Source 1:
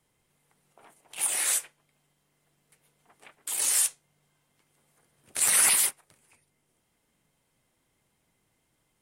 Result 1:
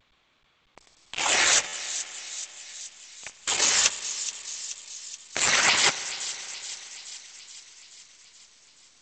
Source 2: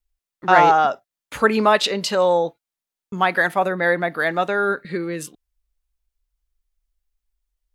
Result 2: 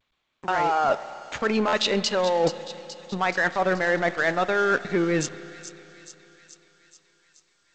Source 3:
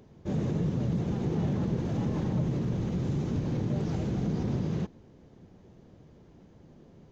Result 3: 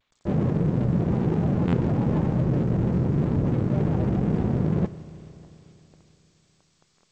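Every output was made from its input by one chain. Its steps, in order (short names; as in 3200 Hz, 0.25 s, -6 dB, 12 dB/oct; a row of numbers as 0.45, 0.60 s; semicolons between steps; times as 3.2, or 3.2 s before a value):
spectral gate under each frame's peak -30 dB strong; limiter -12 dBFS; reverse; compressor 10:1, threshold -30 dBFS; reverse; crossover distortion -45 dBFS; thin delay 0.427 s, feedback 61%, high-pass 3800 Hz, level -9 dB; spring tank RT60 3.4 s, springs 32/49 ms, chirp 25 ms, DRR 14 dB; stuck buffer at 1.67, samples 512, times 4; G.722 64 kbps 16000 Hz; match loudness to -24 LUFS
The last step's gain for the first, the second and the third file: +21.5, +12.0, +13.0 dB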